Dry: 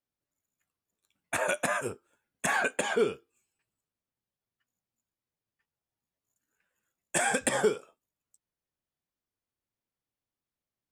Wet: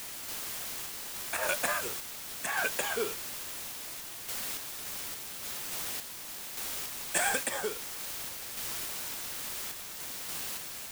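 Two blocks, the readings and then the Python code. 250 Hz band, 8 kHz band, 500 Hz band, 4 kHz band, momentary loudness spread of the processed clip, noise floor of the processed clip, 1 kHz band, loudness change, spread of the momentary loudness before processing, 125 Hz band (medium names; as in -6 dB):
-7.5 dB, +4.0 dB, -6.5 dB, +6.0 dB, 8 LU, -43 dBFS, -3.0 dB, -4.5 dB, 9 LU, -5.0 dB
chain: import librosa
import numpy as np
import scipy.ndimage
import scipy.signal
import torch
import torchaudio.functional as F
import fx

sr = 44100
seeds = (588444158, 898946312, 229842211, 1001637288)

y = fx.low_shelf(x, sr, hz=390.0, db=-12.0)
y = fx.quant_dither(y, sr, seeds[0], bits=6, dither='triangular')
y = fx.tremolo_random(y, sr, seeds[1], hz=3.5, depth_pct=55)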